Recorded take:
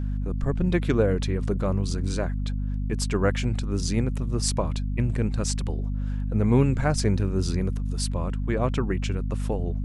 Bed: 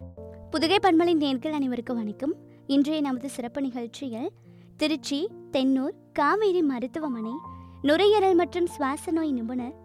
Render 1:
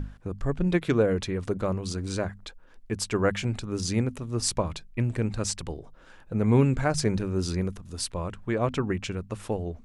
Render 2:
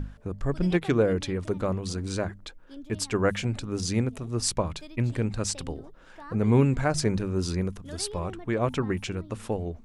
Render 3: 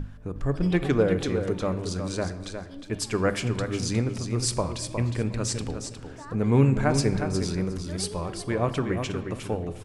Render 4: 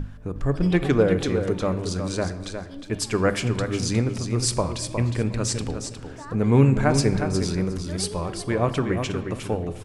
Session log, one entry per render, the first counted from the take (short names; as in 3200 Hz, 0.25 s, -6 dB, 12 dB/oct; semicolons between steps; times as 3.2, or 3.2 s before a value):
notches 50/100/150/200/250 Hz
add bed -22 dB
feedback echo 0.36 s, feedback 16%, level -7.5 dB; shoebox room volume 780 m³, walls mixed, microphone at 0.4 m
gain +3 dB